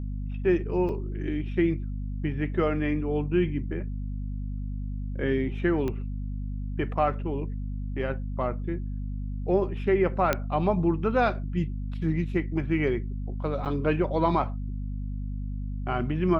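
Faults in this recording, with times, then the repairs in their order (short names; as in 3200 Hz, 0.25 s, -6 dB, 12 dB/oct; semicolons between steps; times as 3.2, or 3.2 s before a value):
hum 50 Hz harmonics 5 -32 dBFS
0.89 gap 3.6 ms
5.88 pop -19 dBFS
10.33 pop -9 dBFS
13.65–13.66 gap 8.3 ms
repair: de-click; de-hum 50 Hz, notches 5; interpolate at 0.89, 3.6 ms; interpolate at 13.65, 8.3 ms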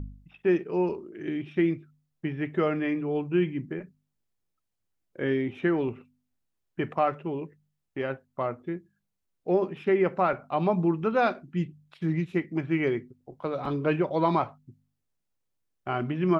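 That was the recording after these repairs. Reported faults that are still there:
5.88 pop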